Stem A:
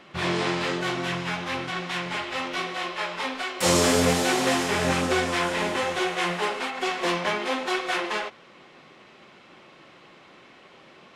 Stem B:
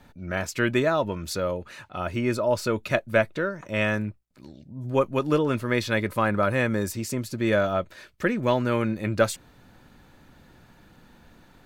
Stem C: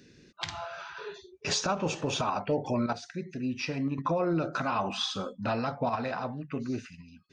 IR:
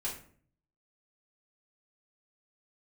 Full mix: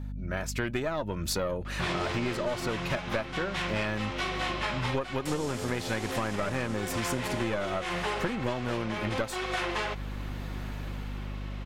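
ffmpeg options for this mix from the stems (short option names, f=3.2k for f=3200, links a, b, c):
-filter_complex "[0:a]adelay=1650,volume=2.5dB[a];[1:a]dynaudnorm=f=180:g=9:m=14dB,aeval=exprs='(tanh(2*val(0)+0.75)-tanh(0.75))/2':c=same,volume=1dB[b];[a]aeval=exprs='val(0)+0.0178*(sin(2*PI*50*n/s)+sin(2*PI*2*50*n/s)/2+sin(2*PI*3*50*n/s)/3+sin(2*PI*4*50*n/s)/4+sin(2*PI*5*50*n/s)/5)':c=same,alimiter=limit=-15.5dB:level=0:latency=1:release=34,volume=0dB[c];[b][c]amix=inputs=2:normalize=0,acompressor=threshold=-27dB:ratio=10"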